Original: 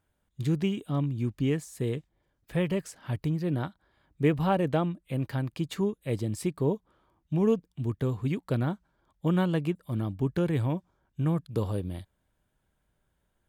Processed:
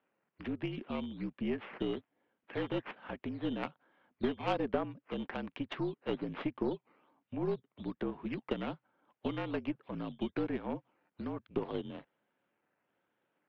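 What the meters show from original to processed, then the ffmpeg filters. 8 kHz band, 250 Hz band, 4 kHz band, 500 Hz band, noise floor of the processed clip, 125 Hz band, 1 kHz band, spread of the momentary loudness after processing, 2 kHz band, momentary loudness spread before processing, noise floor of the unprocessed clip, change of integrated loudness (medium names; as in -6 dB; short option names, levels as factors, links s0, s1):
under -25 dB, -7.5 dB, -3.5 dB, -6.5 dB, under -85 dBFS, -17.0 dB, -5.5 dB, 8 LU, -4.0 dB, 8 LU, -76 dBFS, -8.5 dB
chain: -af "acompressor=threshold=0.0398:ratio=20,acrusher=samples=9:mix=1:aa=0.000001:lfo=1:lforange=9:lforate=1.2,highpass=f=260:t=q:w=0.5412,highpass=f=260:t=q:w=1.307,lowpass=f=3200:t=q:w=0.5176,lowpass=f=3200:t=q:w=0.7071,lowpass=f=3200:t=q:w=1.932,afreqshift=-51,aeval=exprs='0.0841*(cos(1*acos(clip(val(0)/0.0841,-1,1)))-cos(1*PI/2))+0.00944*(cos(2*acos(clip(val(0)/0.0841,-1,1)))-cos(2*PI/2))+0.0106*(cos(3*acos(clip(val(0)/0.0841,-1,1)))-cos(3*PI/2))+0.0106*(cos(4*acos(clip(val(0)/0.0841,-1,1)))-cos(4*PI/2))+0.00168*(cos(6*acos(clip(val(0)/0.0841,-1,1)))-cos(6*PI/2))':c=same,volume=1.68"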